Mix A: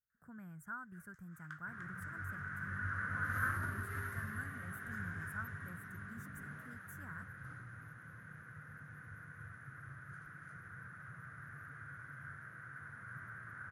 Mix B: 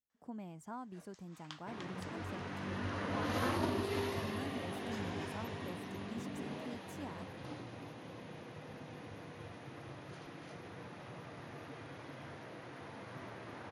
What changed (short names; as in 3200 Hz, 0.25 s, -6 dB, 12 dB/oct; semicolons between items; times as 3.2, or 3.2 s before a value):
speech -4.5 dB; master: remove EQ curve 140 Hz 0 dB, 290 Hz -18 dB, 890 Hz -19 dB, 1500 Hz +12 dB, 2600 Hz -19 dB, 4300 Hz -23 dB, 13000 Hz +4 dB